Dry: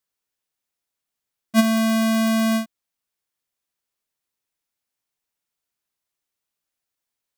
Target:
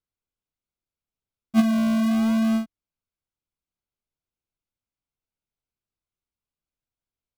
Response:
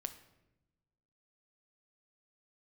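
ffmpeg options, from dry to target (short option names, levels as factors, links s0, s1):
-filter_complex "[0:a]aemphasis=mode=reproduction:type=bsi,asplit=2[s0][s1];[s1]acrusher=samples=41:mix=1:aa=0.000001:lfo=1:lforange=24.6:lforate=0.67,volume=0.355[s2];[s0][s2]amix=inputs=2:normalize=0,asuperstop=centerf=1800:order=4:qfactor=5.6,volume=0.398"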